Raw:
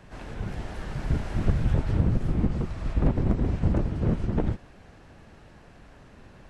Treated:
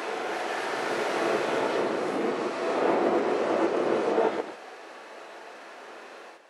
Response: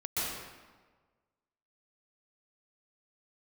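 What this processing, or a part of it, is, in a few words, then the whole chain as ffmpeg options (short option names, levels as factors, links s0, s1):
ghost voice: -filter_complex "[0:a]areverse[s0];[1:a]atrim=start_sample=2205[s1];[s0][s1]afir=irnorm=-1:irlink=0,areverse,highpass=f=400:w=0.5412,highpass=f=400:w=1.3066,volume=1.88"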